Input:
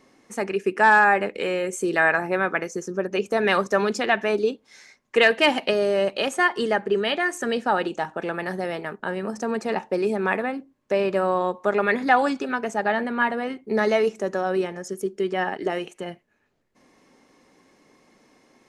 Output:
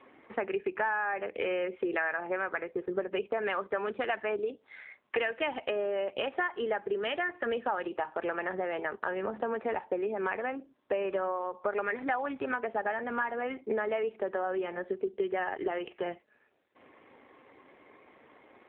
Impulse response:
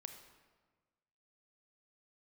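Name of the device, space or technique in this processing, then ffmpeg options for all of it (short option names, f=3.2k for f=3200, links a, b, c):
voicemail: -af "highpass=360,lowpass=3k,acompressor=threshold=-34dB:ratio=6,volume=5.5dB" -ar 8000 -c:a libopencore_amrnb -b:a 7400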